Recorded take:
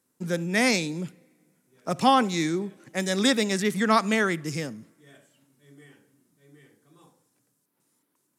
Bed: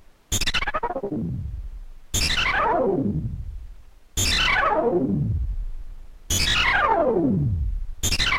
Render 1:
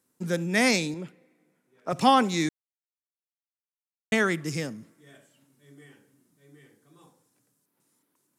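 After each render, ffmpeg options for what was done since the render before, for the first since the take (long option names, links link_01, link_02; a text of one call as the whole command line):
ffmpeg -i in.wav -filter_complex "[0:a]asettb=1/sr,asplit=3[link_01][link_02][link_03];[link_01]atrim=end=0.944[link_04];[link_02]atrim=start=0.94:end=1.93,asetpts=PTS-STARTPTS,afade=type=in:duration=0.004:curve=qsin,afade=type=out:start_time=0.986:duration=0.004:curve=qsin,bass=frequency=250:gain=-8,treble=frequency=4000:gain=-11[link_05];[link_03]atrim=start=1.926[link_06];[link_04][link_05]acrossfade=duration=0.004:curve1=hsin:curve2=qsin[link_07];[link_07][link_06]acrossfade=duration=0.004:curve1=qsin:curve2=hsin,asplit=3[link_08][link_09][link_10];[link_08]atrim=end=2.49,asetpts=PTS-STARTPTS,afade=type=out:start_time=2.486:duration=0.004:curve=hsin[link_11];[link_09]atrim=start=2.49:end=4.12,asetpts=PTS-STARTPTS,volume=0[link_12];[link_10]atrim=start=4.12,asetpts=PTS-STARTPTS,afade=type=in:duration=0.004:curve=hsin[link_13];[link_11][link_12][link_13]concat=n=3:v=0:a=1" out.wav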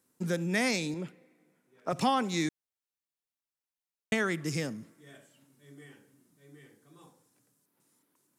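ffmpeg -i in.wav -af "acompressor=threshold=-29dB:ratio=2" out.wav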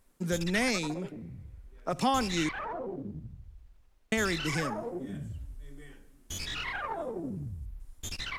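ffmpeg -i in.wav -i bed.wav -filter_complex "[1:a]volume=-16dB[link_01];[0:a][link_01]amix=inputs=2:normalize=0" out.wav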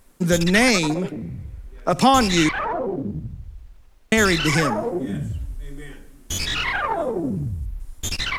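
ffmpeg -i in.wav -af "volume=12dB,alimiter=limit=-1dB:level=0:latency=1" out.wav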